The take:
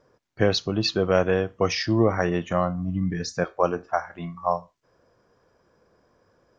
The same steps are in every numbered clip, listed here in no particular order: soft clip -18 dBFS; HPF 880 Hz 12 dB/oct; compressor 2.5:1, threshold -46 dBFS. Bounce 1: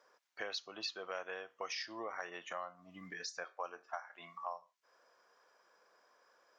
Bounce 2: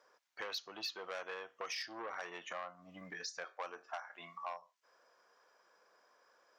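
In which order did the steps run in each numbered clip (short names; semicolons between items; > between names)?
HPF > compressor > soft clip; soft clip > HPF > compressor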